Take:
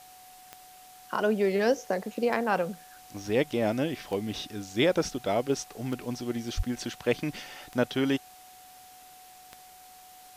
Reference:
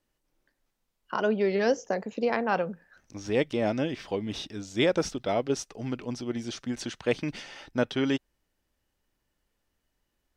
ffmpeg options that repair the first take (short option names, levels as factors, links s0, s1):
-filter_complex "[0:a]adeclick=t=4,bandreject=f=740:w=30,asplit=3[s0][s1][s2];[s0]afade=t=out:st=6.56:d=0.02[s3];[s1]highpass=f=140:w=0.5412,highpass=f=140:w=1.3066,afade=t=in:st=6.56:d=0.02,afade=t=out:st=6.68:d=0.02[s4];[s2]afade=t=in:st=6.68:d=0.02[s5];[s3][s4][s5]amix=inputs=3:normalize=0,afwtdn=0.0022"